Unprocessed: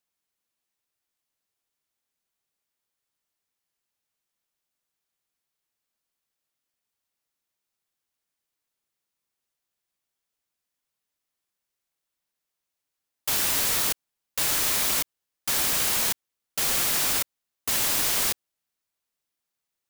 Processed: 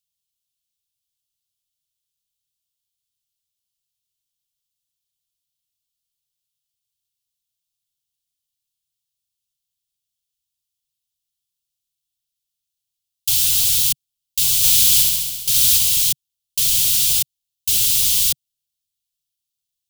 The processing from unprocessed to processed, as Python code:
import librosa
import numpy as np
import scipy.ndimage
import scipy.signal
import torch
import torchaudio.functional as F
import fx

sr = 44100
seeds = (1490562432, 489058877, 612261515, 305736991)

y = scipy.signal.sosfilt(scipy.signal.ellip(3, 1.0, 40, [140.0, 3100.0], 'bandstop', fs=sr, output='sos'), x)
y = fx.leveller(y, sr, passes=1)
y = fx.room_flutter(y, sr, wall_m=11.6, rt60_s=1.5, at=(14.62, 15.77), fade=0.02)
y = y * librosa.db_to_amplitude(5.5)